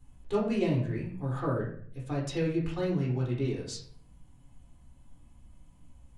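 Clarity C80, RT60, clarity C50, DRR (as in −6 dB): 9.0 dB, 0.55 s, 4.5 dB, −5.0 dB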